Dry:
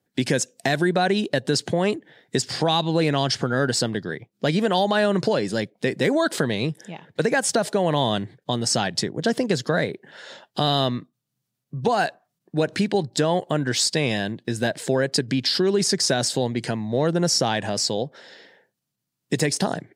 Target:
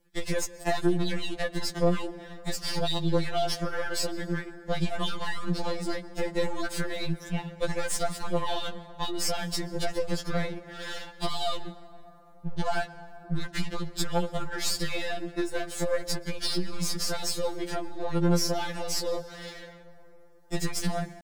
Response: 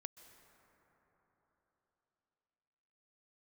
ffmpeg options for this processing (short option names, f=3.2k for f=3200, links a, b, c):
-filter_complex "[0:a]aeval=exprs='if(lt(val(0),0),0.251*val(0),val(0))':c=same,acompressor=threshold=-35dB:ratio=4,atempo=0.94,asplit=2[a][b];[1:a]atrim=start_sample=2205[c];[b][c]afir=irnorm=-1:irlink=0,volume=5.5dB[d];[a][d]amix=inputs=2:normalize=0,afftfilt=real='re*2.83*eq(mod(b,8),0)':imag='im*2.83*eq(mod(b,8),0)':win_size=2048:overlap=0.75,volume=3.5dB"